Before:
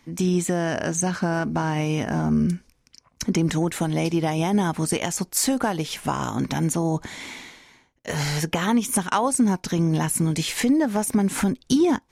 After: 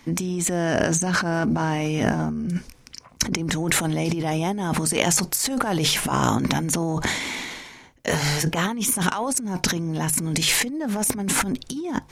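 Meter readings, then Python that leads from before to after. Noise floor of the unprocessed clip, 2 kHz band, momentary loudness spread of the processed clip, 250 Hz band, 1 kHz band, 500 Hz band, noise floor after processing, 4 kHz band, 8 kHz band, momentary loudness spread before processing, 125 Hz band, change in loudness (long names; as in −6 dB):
−64 dBFS, +4.5 dB, 9 LU, −2.5 dB, +0.5 dB, −1.0 dB, −50 dBFS, +5.5 dB, +4.0 dB, 6 LU, −0.5 dB, +0.5 dB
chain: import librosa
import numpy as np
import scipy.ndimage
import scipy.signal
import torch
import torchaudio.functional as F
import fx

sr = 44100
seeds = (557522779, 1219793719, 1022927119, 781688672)

y = fx.transient(x, sr, attack_db=3, sustain_db=8)
y = fx.over_compress(y, sr, threshold_db=-26.0, ratio=-1.0)
y = fx.hum_notches(y, sr, base_hz=50, count=3)
y = y * librosa.db_to_amplitude(2.5)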